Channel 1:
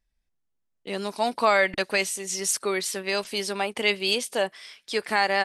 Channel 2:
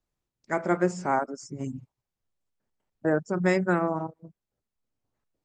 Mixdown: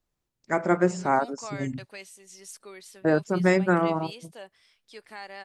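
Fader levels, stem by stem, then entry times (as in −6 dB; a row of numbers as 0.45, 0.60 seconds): −18.5, +2.5 decibels; 0.00, 0.00 seconds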